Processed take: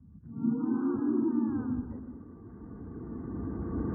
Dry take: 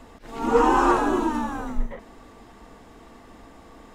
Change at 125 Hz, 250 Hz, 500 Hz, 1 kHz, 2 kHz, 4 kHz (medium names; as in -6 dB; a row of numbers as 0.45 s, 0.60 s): +2.5 dB, -2.0 dB, -14.5 dB, -24.5 dB, under -20 dB, under -40 dB